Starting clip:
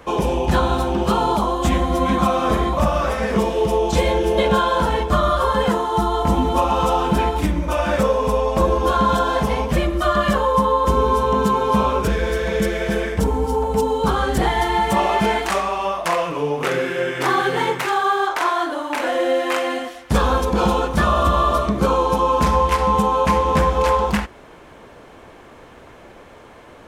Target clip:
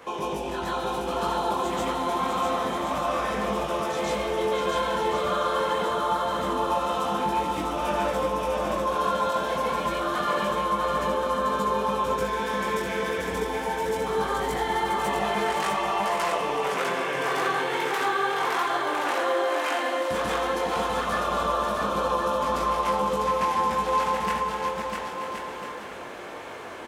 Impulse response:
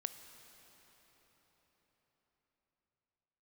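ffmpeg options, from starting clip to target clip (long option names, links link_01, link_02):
-filter_complex "[0:a]asplit=2[link_01][link_02];[1:a]atrim=start_sample=2205,afade=type=out:start_time=0.39:duration=0.01,atrim=end_sample=17640,adelay=140[link_03];[link_02][link_03]afir=irnorm=-1:irlink=0,volume=6.5dB[link_04];[link_01][link_04]amix=inputs=2:normalize=0,flanger=delay=19.5:depth=2.8:speed=0.27,acompressor=threshold=-35dB:ratio=2,highpass=frequency=390:poles=1,aecho=1:1:650|1072|1347|1526|1642:0.631|0.398|0.251|0.158|0.1,volume=2dB"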